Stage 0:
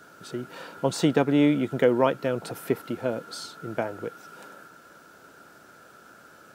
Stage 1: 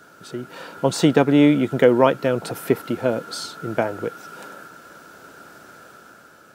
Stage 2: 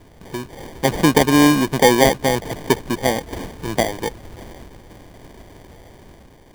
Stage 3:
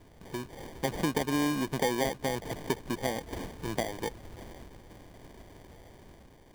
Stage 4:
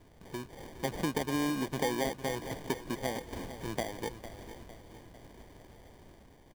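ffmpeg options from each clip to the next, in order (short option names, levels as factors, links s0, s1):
-af "dynaudnorm=f=120:g=11:m=1.78,volume=1.26"
-filter_complex "[0:a]asplit=2[s0][s1];[s1]asoftclip=type=tanh:threshold=0.335,volume=0.562[s2];[s0][s2]amix=inputs=2:normalize=0,acrusher=samples=33:mix=1:aa=0.000001,volume=0.841"
-af "acompressor=threshold=0.1:ratio=2.5,volume=0.376"
-af "aecho=1:1:454|908|1362|1816|2270:0.224|0.107|0.0516|0.0248|0.0119,volume=0.708"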